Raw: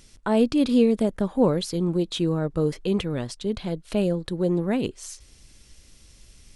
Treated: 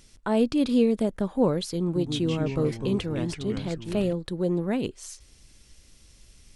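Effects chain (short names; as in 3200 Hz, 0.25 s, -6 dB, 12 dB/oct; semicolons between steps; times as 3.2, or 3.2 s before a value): 1.84–4.13 echoes that change speed 0.113 s, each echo -3 st, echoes 3, each echo -6 dB; gain -2.5 dB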